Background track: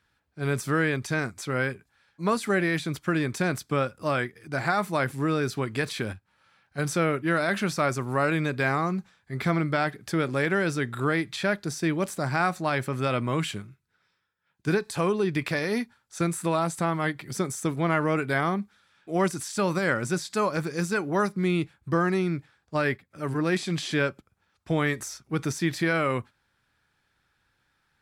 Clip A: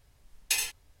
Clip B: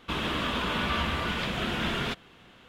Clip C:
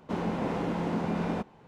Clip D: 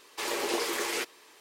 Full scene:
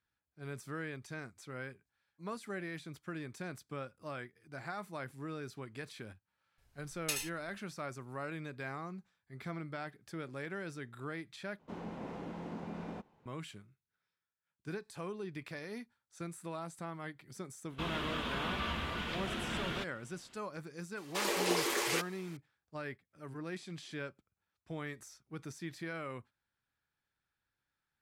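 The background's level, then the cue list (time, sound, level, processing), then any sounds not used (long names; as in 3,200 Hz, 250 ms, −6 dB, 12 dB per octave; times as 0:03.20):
background track −17 dB
0:06.58: mix in A −8.5 dB
0:11.59: overwrite with C −13 dB
0:17.70: mix in B −8.5 dB
0:20.97: mix in D −2 dB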